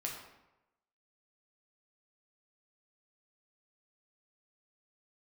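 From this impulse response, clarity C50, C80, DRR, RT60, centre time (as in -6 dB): 4.0 dB, 6.5 dB, -1.5 dB, 0.95 s, 42 ms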